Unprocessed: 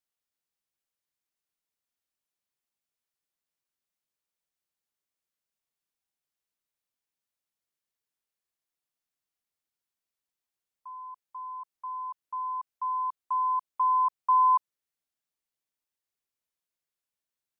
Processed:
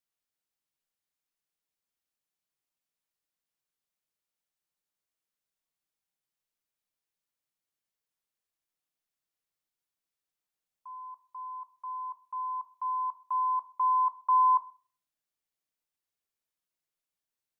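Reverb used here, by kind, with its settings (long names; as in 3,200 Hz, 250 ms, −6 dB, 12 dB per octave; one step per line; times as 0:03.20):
rectangular room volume 350 cubic metres, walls furnished, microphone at 0.56 metres
level −1.5 dB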